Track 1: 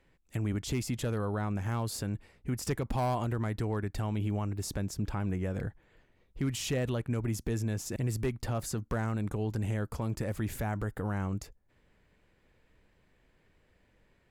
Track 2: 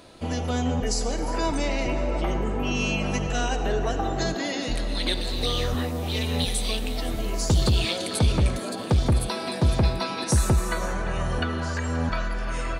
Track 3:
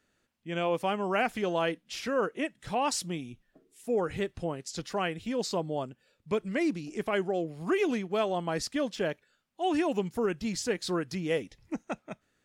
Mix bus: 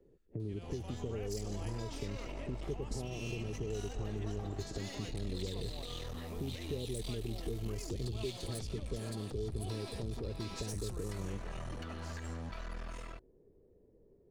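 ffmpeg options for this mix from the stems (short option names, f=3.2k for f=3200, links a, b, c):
-filter_complex "[0:a]acompressor=threshold=-38dB:ratio=2.5,lowpass=f=420:t=q:w=4.9,volume=-0.5dB[a];[1:a]acompressor=threshold=-24dB:ratio=6,aeval=exprs='clip(val(0),-1,0.0224)':c=same,adelay=400,volume=-16dB[b];[2:a]acompressor=threshold=-33dB:ratio=3,volume=-17dB[c];[b][c]amix=inputs=2:normalize=0,dynaudnorm=f=580:g=3:m=6dB,alimiter=level_in=6.5dB:limit=-24dB:level=0:latency=1:release=70,volume=-6.5dB,volume=0dB[d];[a][d]amix=inputs=2:normalize=0,bandreject=f=1.5k:w=18,acrossover=split=120|3000[e][f][g];[f]acompressor=threshold=-45dB:ratio=2[h];[e][h][g]amix=inputs=3:normalize=0"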